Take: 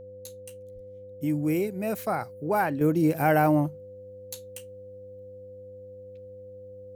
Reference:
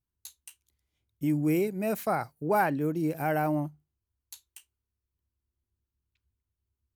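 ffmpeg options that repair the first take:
-filter_complex "[0:a]bandreject=f=99.5:t=h:w=4,bandreject=f=199:t=h:w=4,bandreject=f=298.5:t=h:w=4,bandreject=f=398:t=h:w=4,bandreject=f=497.5:t=h:w=4,bandreject=f=597:t=h:w=4,bandreject=f=510:w=30,asplit=3[s0][s1][s2];[s0]afade=t=out:st=0.74:d=0.02[s3];[s1]highpass=f=140:w=0.5412,highpass=f=140:w=1.3066,afade=t=in:st=0.74:d=0.02,afade=t=out:st=0.86:d=0.02[s4];[s2]afade=t=in:st=0.86:d=0.02[s5];[s3][s4][s5]amix=inputs=3:normalize=0,asetnsamples=n=441:p=0,asendcmd='2.81 volume volume -6.5dB',volume=1"

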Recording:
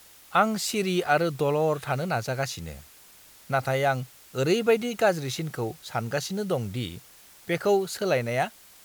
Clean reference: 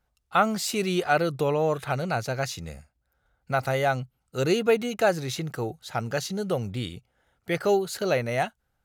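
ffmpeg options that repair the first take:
-af "afftdn=nr=21:nf=-52"

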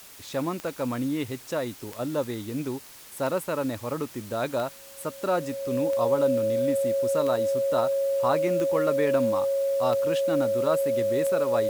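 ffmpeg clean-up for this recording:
-af "adeclick=t=4,bandreject=f=550:w=30,afwtdn=0.0045"

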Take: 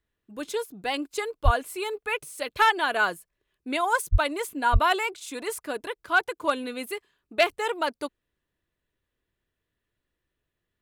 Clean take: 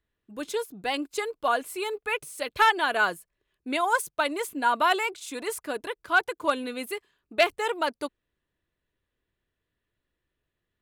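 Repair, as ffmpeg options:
-filter_complex "[0:a]asplit=3[s0][s1][s2];[s0]afade=t=out:st=1.44:d=0.02[s3];[s1]highpass=f=140:w=0.5412,highpass=f=140:w=1.3066,afade=t=in:st=1.44:d=0.02,afade=t=out:st=1.56:d=0.02[s4];[s2]afade=t=in:st=1.56:d=0.02[s5];[s3][s4][s5]amix=inputs=3:normalize=0,asplit=3[s6][s7][s8];[s6]afade=t=out:st=4.11:d=0.02[s9];[s7]highpass=f=140:w=0.5412,highpass=f=140:w=1.3066,afade=t=in:st=4.11:d=0.02,afade=t=out:st=4.23:d=0.02[s10];[s8]afade=t=in:st=4.23:d=0.02[s11];[s9][s10][s11]amix=inputs=3:normalize=0,asplit=3[s12][s13][s14];[s12]afade=t=out:st=4.72:d=0.02[s15];[s13]highpass=f=140:w=0.5412,highpass=f=140:w=1.3066,afade=t=in:st=4.72:d=0.02,afade=t=out:st=4.84:d=0.02[s16];[s14]afade=t=in:st=4.84:d=0.02[s17];[s15][s16][s17]amix=inputs=3:normalize=0"

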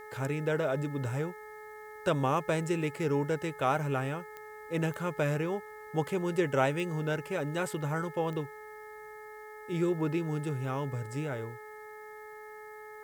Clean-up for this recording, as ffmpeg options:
-af "adeclick=t=4,bandreject=f=427:t=h:w=4,bandreject=f=854:t=h:w=4,bandreject=f=1281:t=h:w=4,bandreject=f=1708:t=h:w=4,bandreject=f=2135:t=h:w=4,bandreject=f=1800:w=30,agate=range=0.0891:threshold=0.0112"

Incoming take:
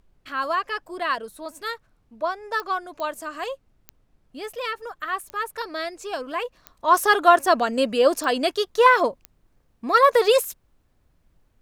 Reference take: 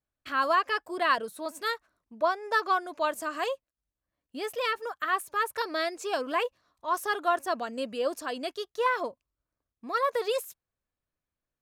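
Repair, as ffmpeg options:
-af "adeclick=t=4,agate=range=0.0891:threshold=0.00178,asetnsamples=n=441:p=0,asendcmd='6.52 volume volume -11.5dB',volume=1"

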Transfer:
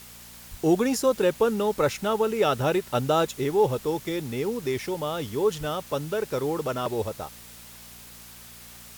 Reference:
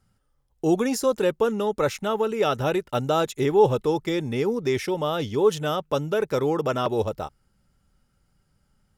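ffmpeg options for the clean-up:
-filter_complex "[0:a]bandreject=f=58.6:t=h:w=4,bandreject=f=117.2:t=h:w=4,bandreject=f=175.8:t=h:w=4,bandreject=f=234.4:t=h:w=4,asplit=3[s0][s1][s2];[s0]afade=t=out:st=0.5:d=0.02[s3];[s1]highpass=f=140:w=0.5412,highpass=f=140:w=1.3066,afade=t=in:st=0.5:d=0.02,afade=t=out:st=0.62:d=0.02[s4];[s2]afade=t=in:st=0.62:d=0.02[s5];[s3][s4][s5]amix=inputs=3:normalize=0,asplit=3[s6][s7][s8];[s6]afade=t=out:st=5.59:d=0.02[s9];[s7]highpass=f=140:w=0.5412,highpass=f=140:w=1.3066,afade=t=in:st=5.59:d=0.02,afade=t=out:st=5.71:d=0.02[s10];[s8]afade=t=in:st=5.71:d=0.02[s11];[s9][s10][s11]amix=inputs=3:normalize=0,afwtdn=0.005,asetnsamples=n=441:p=0,asendcmd='3.31 volume volume 4dB',volume=1"

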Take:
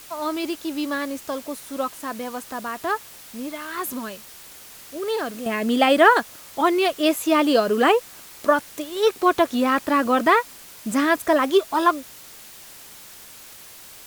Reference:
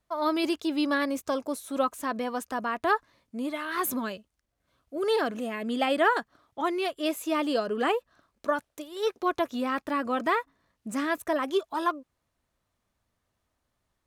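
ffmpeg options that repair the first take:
-af "afwtdn=0.0071,asetnsamples=n=441:p=0,asendcmd='5.46 volume volume -9dB',volume=1"

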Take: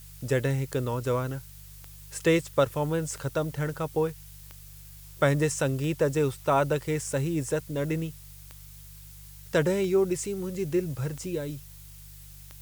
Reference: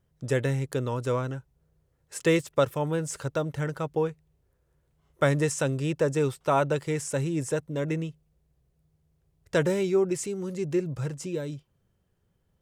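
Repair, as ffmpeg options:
-af "adeclick=t=4,bandreject=f=49.5:t=h:w=4,bandreject=f=99:t=h:w=4,bandreject=f=148.5:t=h:w=4,afftdn=nr=24:nf=-47"

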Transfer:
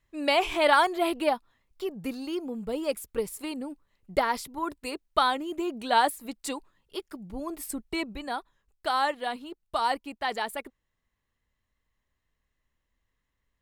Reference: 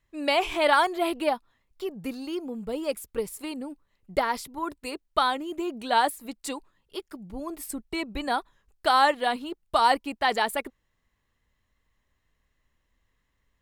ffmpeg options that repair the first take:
-af "asetnsamples=n=441:p=0,asendcmd='8.15 volume volume 6dB',volume=1"

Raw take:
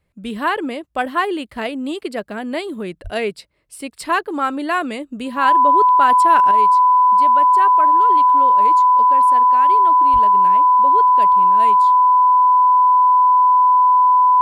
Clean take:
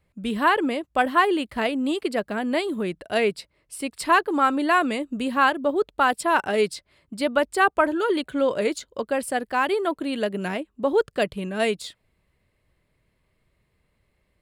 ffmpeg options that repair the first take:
-filter_complex "[0:a]bandreject=f=1000:w=30,asplit=3[s0][s1][s2];[s0]afade=t=out:st=3.03:d=0.02[s3];[s1]highpass=f=140:w=0.5412,highpass=f=140:w=1.3066,afade=t=in:st=3.03:d=0.02,afade=t=out:st=3.15:d=0.02[s4];[s2]afade=t=in:st=3.15:d=0.02[s5];[s3][s4][s5]amix=inputs=3:normalize=0,asplit=3[s6][s7][s8];[s6]afade=t=out:st=10.12:d=0.02[s9];[s7]highpass=f=140:w=0.5412,highpass=f=140:w=1.3066,afade=t=in:st=10.12:d=0.02,afade=t=out:st=10.24:d=0.02[s10];[s8]afade=t=in:st=10.24:d=0.02[s11];[s9][s10][s11]amix=inputs=3:normalize=0,asetnsamples=n=441:p=0,asendcmd='6.51 volume volume 8dB',volume=1"

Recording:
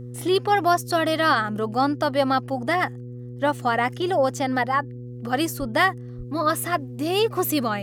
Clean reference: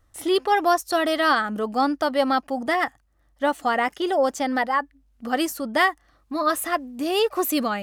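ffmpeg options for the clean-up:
-filter_complex "[0:a]bandreject=f=122.5:t=h:w=4,bandreject=f=245:t=h:w=4,bandreject=f=367.5:t=h:w=4,bandreject=f=490:t=h:w=4,asplit=3[s0][s1][s2];[s0]afade=t=out:st=5.59:d=0.02[s3];[s1]highpass=f=140:w=0.5412,highpass=f=140:w=1.3066,afade=t=in:st=5.59:d=0.02,afade=t=out:st=5.71:d=0.02[s4];[s2]afade=t=in:st=5.71:d=0.02[s5];[s3][s4][s5]amix=inputs=3:normalize=0,asplit=3[s6][s7][s8];[s6]afade=t=out:st=6.17:d=0.02[s9];[s7]highpass=f=140:w=0.5412,highpass=f=140:w=1.3066,afade=t=in:st=6.17:d=0.02,afade=t=out:st=6.29:d=0.02[s10];[s8]afade=t=in:st=6.29:d=0.02[s11];[s9][s10][s11]amix=inputs=3:normalize=0"

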